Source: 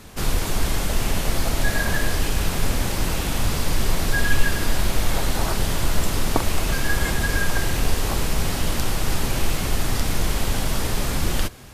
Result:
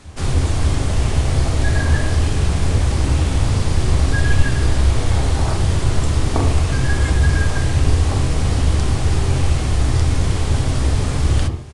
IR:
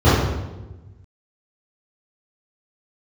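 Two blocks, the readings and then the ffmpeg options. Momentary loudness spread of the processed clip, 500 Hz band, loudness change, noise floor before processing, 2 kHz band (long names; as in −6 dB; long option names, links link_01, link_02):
2 LU, +3.0 dB, +6.0 dB, −26 dBFS, −1.0 dB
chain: -filter_complex "[0:a]asplit=2[link_01][link_02];[link_02]asuperstop=centerf=1500:order=20:qfactor=4.1[link_03];[1:a]atrim=start_sample=2205,afade=type=out:start_time=0.21:duration=0.01,atrim=end_sample=9702[link_04];[link_03][link_04]afir=irnorm=-1:irlink=0,volume=-29dB[link_05];[link_01][link_05]amix=inputs=2:normalize=0,aresample=22050,aresample=44100,volume=-1dB"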